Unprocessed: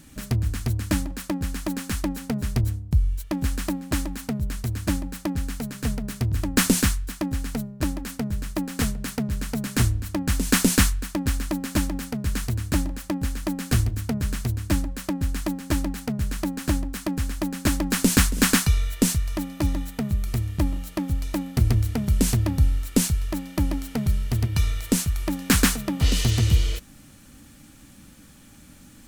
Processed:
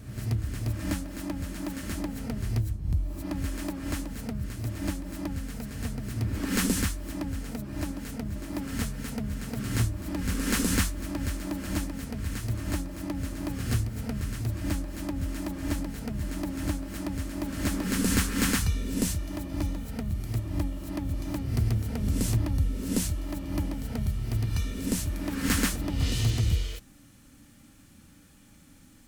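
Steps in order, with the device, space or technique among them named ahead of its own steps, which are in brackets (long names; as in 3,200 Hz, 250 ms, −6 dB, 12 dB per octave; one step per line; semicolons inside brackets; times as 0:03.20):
reverse reverb (reversed playback; convolution reverb RT60 1.2 s, pre-delay 14 ms, DRR 3 dB; reversed playback)
level −8 dB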